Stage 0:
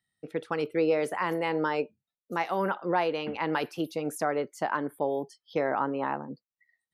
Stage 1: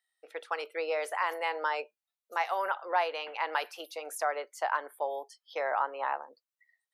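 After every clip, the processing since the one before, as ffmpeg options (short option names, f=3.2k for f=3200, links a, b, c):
-af "highpass=f=590:w=0.5412,highpass=f=590:w=1.3066"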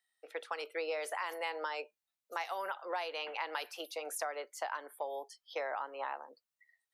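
-filter_complex "[0:a]acrossover=split=290|3000[a][b][c];[b]acompressor=threshold=-36dB:ratio=6[d];[a][d][c]amix=inputs=3:normalize=0"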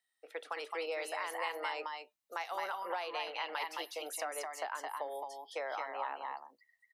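-af "aecho=1:1:216|217:0.422|0.631,volume=-1.5dB"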